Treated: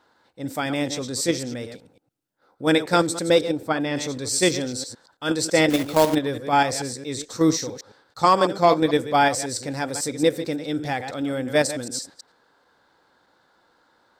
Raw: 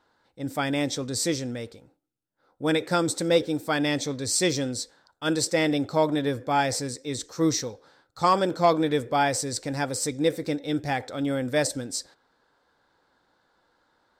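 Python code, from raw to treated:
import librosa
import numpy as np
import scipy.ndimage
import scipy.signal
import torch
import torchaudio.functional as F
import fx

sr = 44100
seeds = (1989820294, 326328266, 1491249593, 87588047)

p1 = fx.reverse_delay(x, sr, ms=110, wet_db=-9.5)
p2 = fx.low_shelf(p1, sr, hz=69.0, db=-10.0)
p3 = fx.level_steps(p2, sr, step_db=23)
p4 = p2 + (p3 * librosa.db_to_amplitude(0.0))
p5 = fx.high_shelf(p4, sr, hz=fx.line((3.5, 2500.0), (3.95, 3800.0)), db=-11.5, at=(3.5, 3.95), fade=0.02)
y = fx.quant_companded(p5, sr, bits=4, at=(5.7, 6.15))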